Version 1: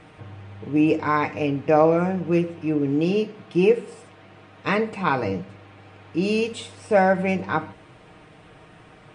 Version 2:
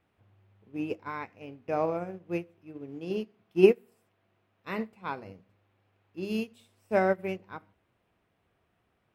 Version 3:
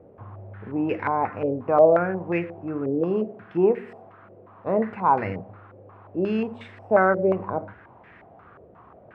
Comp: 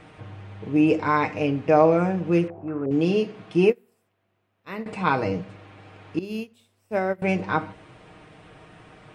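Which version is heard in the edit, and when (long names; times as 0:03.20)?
1
0:02.48–0:02.91: punch in from 3
0:03.70–0:04.86: punch in from 2
0:06.19–0:07.22: punch in from 2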